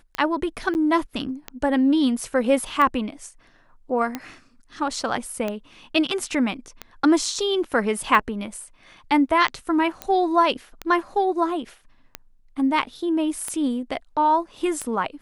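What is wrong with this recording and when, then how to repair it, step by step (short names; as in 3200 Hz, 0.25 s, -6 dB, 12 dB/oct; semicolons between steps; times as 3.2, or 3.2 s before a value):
tick 45 rpm -13 dBFS
0.74–0.75 gap 9.9 ms
10.02 pop -13 dBFS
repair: de-click; interpolate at 0.74, 9.9 ms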